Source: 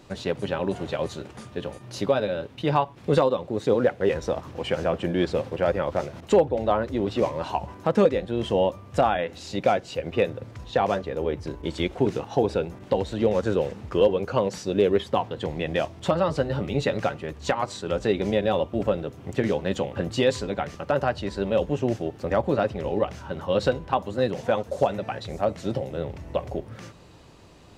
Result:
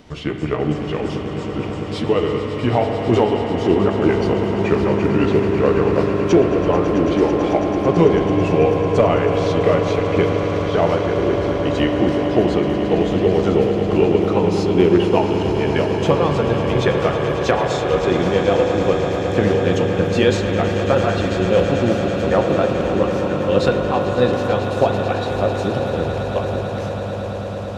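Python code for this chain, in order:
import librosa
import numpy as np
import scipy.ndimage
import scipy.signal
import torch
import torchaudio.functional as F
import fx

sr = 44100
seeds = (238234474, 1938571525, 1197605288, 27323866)

y = fx.pitch_glide(x, sr, semitones=-4.5, runs='ending unshifted')
y = fx.echo_swell(y, sr, ms=110, loudest=8, wet_db=-13.0)
y = fx.rev_spring(y, sr, rt60_s=3.5, pass_ms=(40,), chirp_ms=35, drr_db=5.0)
y = y * 10.0 ** (6.0 / 20.0)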